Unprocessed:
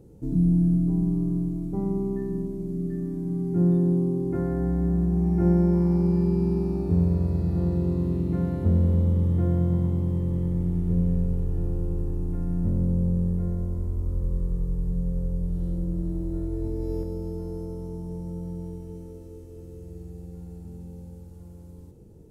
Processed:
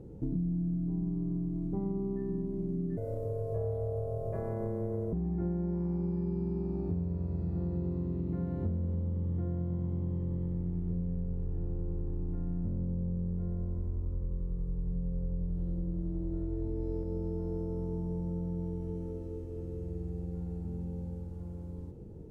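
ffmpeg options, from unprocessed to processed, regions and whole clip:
-filter_complex "[0:a]asettb=1/sr,asplit=3[s0][s1][s2];[s0]atrim=end=2.974[s3];[s1]atrim=start=2.97:end=5.13,asetpts=PTS-STARTPTS,afade=t=in:d=0.004:c=qsin,afade=t=out:st=2.156:d=0.004:c=qsin,aemphasis=mode=production:type=75fm,aeval=exprs='val(0)*sin(2*PI*280*n/s)':c=same[s4];[s2]atrim=start=5.126[s5];[s3][s4]acrossfade=d=0.004:c1=hsin:c2=qsin[s6];[s6][s5]acrossfade=d=0.004:c1=qsin:c2=hsin,lowpass=f=1500:p=1,acompressor=threshold=0.02:ratio=6,volume=1.41"

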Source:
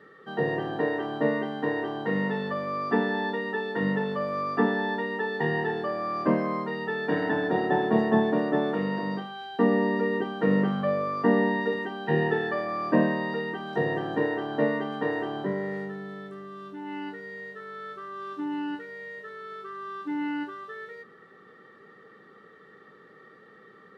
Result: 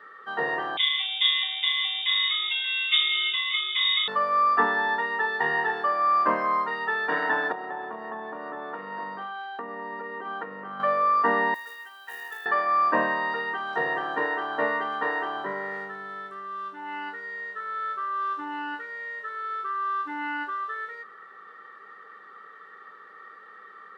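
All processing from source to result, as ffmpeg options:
-filter_complex "[0:a]asettb=1/sr,asplit=3[s0][s1][s2];[s0]atrim=end=0.774[s3];[s1]atrim=start=0.77:end=4.08,asetpts=PTS-STARTPTS,afade=t=in:d=0.004:c=qsin,afade=t=out:st=3.306:d=0.004:c=qsin,lowpass=f=3300:t=q:w=0.5098,lowpass=f=3300:t=q:w=0.6013,lowpass=f=3300:t=q:w=0.9,lowpass=f=3300:t=q:w=2.563,afreqshift=-3900,aecho=1:1:582:0.211,atrim=end_sample=145971[s4];[s2]atrim=start=4.076[s5];[s3][s4]acrossfade=d=0.004:c1=hsin:c2=qsin[s6];[s6][s5]acrossfade=d=0.004:c1=qsin:c2=hsin,asettb=1/sr,asplit=3[s7][s8][s9];[s7]atrim=end=7.524[s10];[s8]atrim=start=7.52:end=10.8,asetpts=PTS-STARTPTS,afade=t=in:d=0.004:c=qsin,afade=t=out:st=3.276:d=0.004:c=qsin,highshelf=f=3200:g=-12,acompressor=threshold=0.0316:ratio=8:attack=3.2:release=140:knee=1:detection=peak[s11];[s9]atrim=start=10.796[s12];[s10][s11]acrossfade=d=0.004:c1=hsin:c2=qsin[s13];[s13][s12]acrossfade=d=0.004:c1=qsin:c2=hsin,asettb=1/sr,asplit=3[s14][s15][s16];[s14]atrim=end=11.544[s17];[s15]atrim=start=11.54:end=12.46,asetpts=PTS-STARTPTS,afade=t=in:d=0.004:c=qsin,afade=t=out:st=0.916:d=0.004:c=qsin,acrusher=bits=8:mode=log:mix=0:aa=0.000001,aderivative[s18];[s16]atrim=start=12.456[s19];[s17][s18]acrossfade=d=0.004:c1=hsin:c2=qsin[s20];[s20][s19]acrossfade=d=0.004:c1=qsin:c2=hsin,highpass=f=920:p=1,equalizer=f=1200:t=o:w=1.4:g=12.5"

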